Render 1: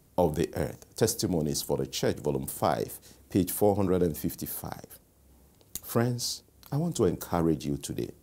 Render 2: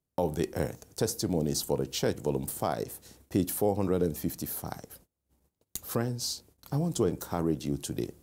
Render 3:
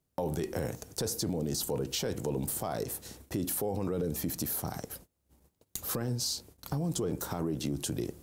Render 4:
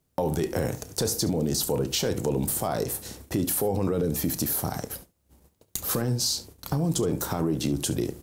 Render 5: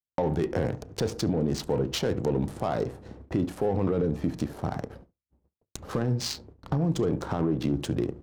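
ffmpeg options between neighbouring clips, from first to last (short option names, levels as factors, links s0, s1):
-af "alimiter=limit=0.168:level=0:latency=1:release=382,agate=range=0.0562:threshold=0.00178:ratio=16:detection=peak"
-af "alimiter=level_in=1.33:limit=0.0631:level=0:latency=1:release=13,volume=0.75,acompressor=threshold=0.0141:ratio=2,volume=2"
-af "aecho=1:1:31|70:0.168|0.133,volume=2.11"
-af "agate=range=0.0224:threshold=0.00398:ratio=3:detection=peak,adynamicsmooth=sensitivity=3:basefreq=1100"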